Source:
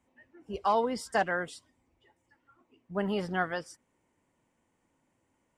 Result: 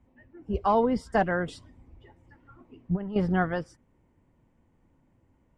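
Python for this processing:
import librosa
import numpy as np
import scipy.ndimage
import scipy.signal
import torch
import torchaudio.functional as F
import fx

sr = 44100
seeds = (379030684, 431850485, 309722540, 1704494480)

y = fx.riaa(x, sr, side='playback')
y = fx.over_compress(y, sr, threshold_db=-30.0, ratio=-0.5, at=(1.48, 3.16))
y = y * librosa.db_to_amplitude(2.0)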